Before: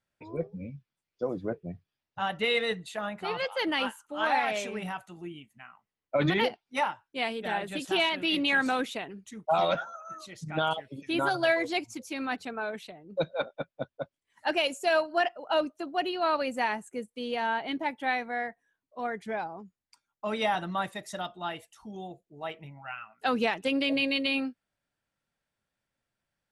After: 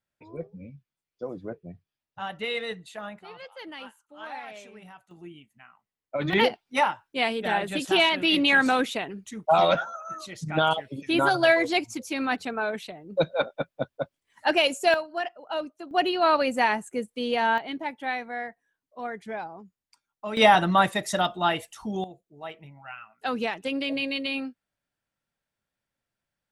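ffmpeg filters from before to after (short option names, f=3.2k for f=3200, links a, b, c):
-af "asetnsamples=n=441:p=0,asendcmd='3.19 volume volume -12dB;5.11 volume volume -3dB;6.33 volume volume 5.5dB;14.94 volume volume -4dB;15.91 volume volume 6dB;17.58 volume volume -1dB;20.37 volume volume 11dB;22.04 volume volume -1.5dB',volume=-3.5dB"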